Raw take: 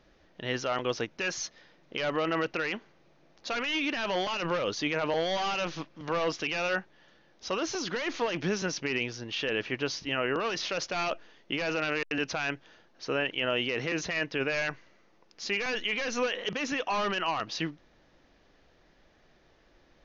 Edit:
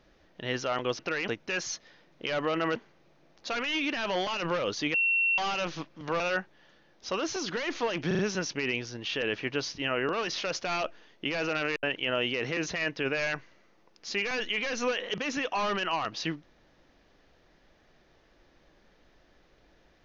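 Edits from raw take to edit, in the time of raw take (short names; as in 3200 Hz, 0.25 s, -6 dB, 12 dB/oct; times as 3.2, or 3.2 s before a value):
2.47–2.76 move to 0.99
4.94–5.38 bleep 2720 Hz -22.5 dBFS
6.2–6.59 cut
8.46 stutter 0.04 s, 4 plays
12.1–13.18 cut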